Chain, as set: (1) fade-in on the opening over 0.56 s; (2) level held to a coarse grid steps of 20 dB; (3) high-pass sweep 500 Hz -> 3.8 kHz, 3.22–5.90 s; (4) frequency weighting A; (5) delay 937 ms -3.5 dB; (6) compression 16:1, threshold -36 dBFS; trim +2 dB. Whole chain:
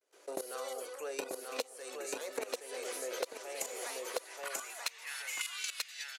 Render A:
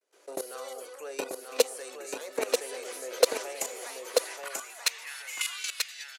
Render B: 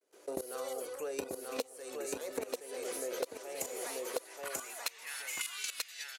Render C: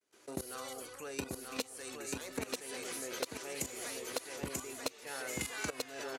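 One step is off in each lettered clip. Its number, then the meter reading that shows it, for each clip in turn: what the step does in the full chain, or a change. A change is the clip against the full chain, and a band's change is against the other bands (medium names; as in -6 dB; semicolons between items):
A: 6, mean gain reduction 3.5 dB; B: 4, 250 Hz band +6.0 dB; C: 3, 250 Hz band +9.5 dB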